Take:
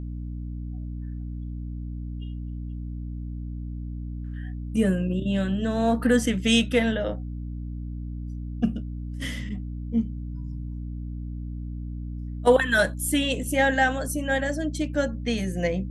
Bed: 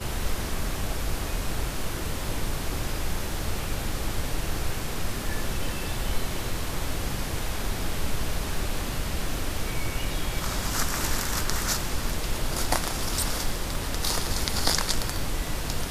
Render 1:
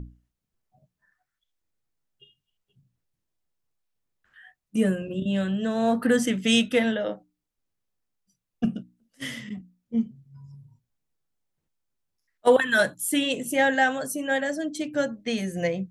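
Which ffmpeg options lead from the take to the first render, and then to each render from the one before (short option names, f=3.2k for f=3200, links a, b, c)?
-af "bandreject=f=60:t=h:w=6,bandreject=f=120:t=h:w=6,bandreject=f=180:t=h:w=6,bandreject=f=240:t=h:w=6,bandreject=f=300:t=h:w=6"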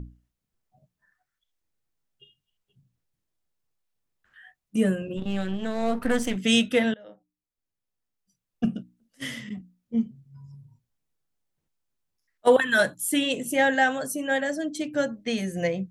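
-filter_complex "[0:a]asplit=3[a][b][c];[a]afade=t=out:st=5.16:d=0.02[d];[b]aeval=exprs='if(lt(val(0),0),0.251*val(0),val(0))':c=same,afade=t=in:st=5.16:d=0.02,afade=t=out:st=6.35:d=0.02[e];[c]afade=t=in:st=6.35:d=0.02[f];[d][e][f]amix=inputs=3:normalize=0,asplit=2[g][h];[g]atrim=end=6.94,asetpts=PTS-STARTPTS,afade=t=out:st=6.936:d=0.004:c=hsin:silence=0.0630957[i];[h]atrim=start=6.94,asetpts=PTS-STARTPTS,afade=t=in:d=1.71:silence=0.0630957[j];[i][j]concat=n=2:v=0:a=1"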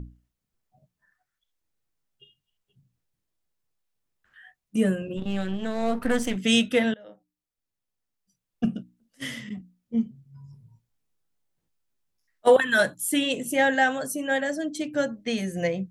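-filter_complex "[0:a]asettb=1/sr,asplit=3[a][b][c];[a]atrim=end=10.514[d];[b]atrim=start=10.51:end=12.56,asetpts=PTS-STARTPTS,afade=t=in:d=0.004:c=qsin,afade=t=out:st=2.046:d=0.004:c=qsin,asplit=2[e][f];[f]adelay=18,volume=-6dB[g];[e][g]amix=inputs=2:normalize=0,atrim=end_sample=90405[h];[c]atrim=start=12.556[i];[d][h]acrossfade=d=0.004:c1=hsin:c2=qsin[j];[j][i]acrossfade=d=0.004:c1=qsin:c2=hsin"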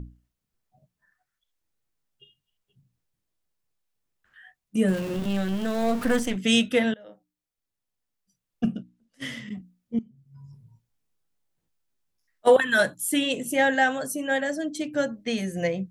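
-filter_complex "[0:a]asettb=1/sr,asplit=3[a][b][c];[a]atrim=end=4.884[d];[b]atrim=start=4.88:end=6.2,asetpts=PTS-STARTPTS,afade=t=in:d=0.004:c=qsin,afade=t=out:st=1.316:d=0.004:c=qsin,aeval=exprs='val(0)+0.5*0.0266*sgn(val(0))':c=same[e];[c]atrim=start=6.196[f];[d][e]acrossfade=d=0.004:c1=hsin:c2=qsin[g];[g][f]acrossfade=d=0.004:c1=qsin:c2=hsin,asettb=1/sr,asplit=3[h][i][j];[h]atrim=end=8.724[k];[i]atrim=start=8.72:end=9.48,asetpts=PTS-STARTPTS,afade=t=in:d=0.004:c=qsin,afade=t=out:st=0.756:d=0.004:c=qsin,highshelf=f=9.9k:g=-11.5[l];[j]atrim=start=9.476[m];[k][l]acrossfade=d=0.004:c1=hsin:c2=qsin[n];[n][m]acrossfade=d=0.004:c1=qsin:c2=hsin,asplit=2[o][p];[o]atrim=end=9.99,asetpts=PTS-STARTPTS,afade=t=out:st=9.986:d=0.004:c=hsin:silence=0.112202[q];[p]atrim=start=9.99,asetpts=PTS-STARTPTS,afade=t=in:d=0.44:silence=0.112202[r];[q][r]concat=n=2:v=0:a=1"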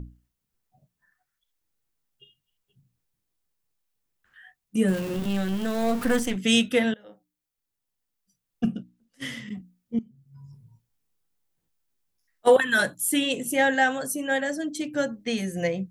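-af "highshelf=f=10k:g=5.5,bandreject=f=620:w=12"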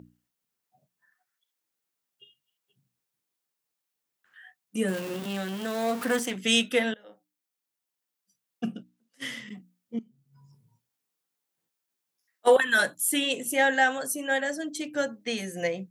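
-af "highpass=120,lowshelf=f=220:g=-12"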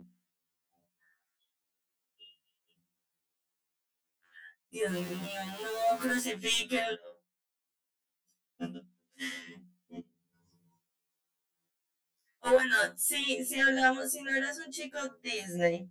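-af "asoftclip=type=tanh:threshold=-15.5dB,afftfilt=real='re*2*eq(mod(b,4),0)':imag='im*2*eq(mod(b,4),0)':win_size=2048:overlap=0.75"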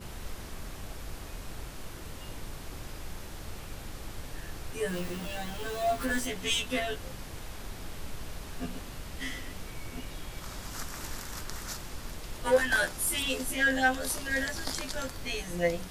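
-filter_complex "[1:a]volume=-12dB[a];[0:a][a]amix=inputs=2:normalize=0"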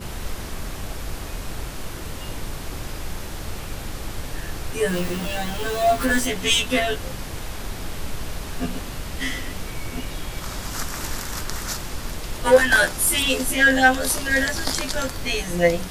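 -af "volume=10dB"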